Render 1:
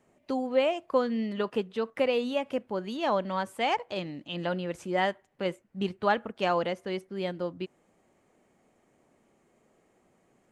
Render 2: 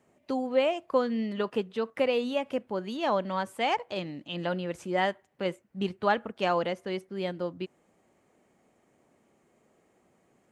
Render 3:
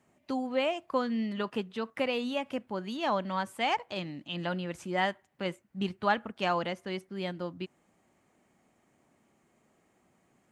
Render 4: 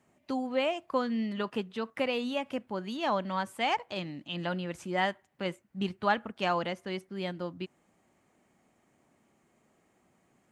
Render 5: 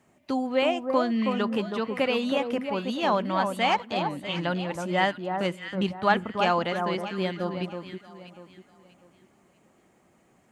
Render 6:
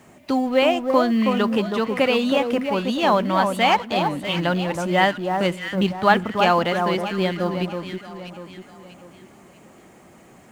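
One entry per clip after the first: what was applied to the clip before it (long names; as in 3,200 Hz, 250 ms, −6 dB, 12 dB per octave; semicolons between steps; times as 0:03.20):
high-pass filter 44 Hz
parametric band 470 Hz −6.5 dB 0.87 octaves
no processing that can be heard
delay that swaps between a low-pass and a high-pass 321 ms, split 1,400 Hz, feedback 53%, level −5 dB; level +5 dB
mu-law and A-law mismatch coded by mu; level +5.5 dB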